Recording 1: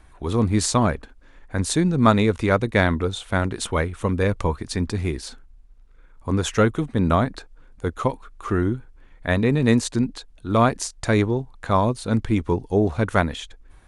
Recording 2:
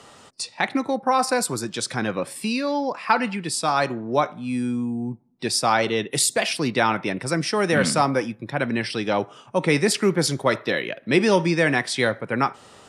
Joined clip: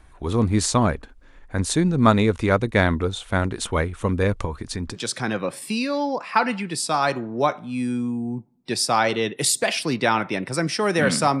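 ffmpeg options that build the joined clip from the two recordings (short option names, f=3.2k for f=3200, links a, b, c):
-filter_complex "[0:a]asettb=1/sr,asplit=3[a][b][c];[a]atrim=end=4.454[d];[b]atrim=start=4.45:end=4.97,asetpts=PTS-STARTPTS,afade=t=in:d=0.004:c=qsin,afade=t=out:st=0.516:d=0.004:c=qsin,acompressor=threshold=-24dB:ratio=4:attack=3.2:release=140:knee=1:detection=peak[e];[c]atrim=start=4.966[f];[d][e]acrossfade=d=0.004:c1=hsin:c2=qsin[g];[g][f]acrossfade=d=0.004:c1=qsin:c2=hsin,apad=whole_dur=11.4,atrim=end=11.4,atrim=end=4.97,asetpts=PTS-STARTPTS[h];[1:a]atrim=start=1.65:end=8.14,asetpts=PTS-STARTPTS[i];[h][i]acrossfade=d=0.06:c1=tri:c2=tri"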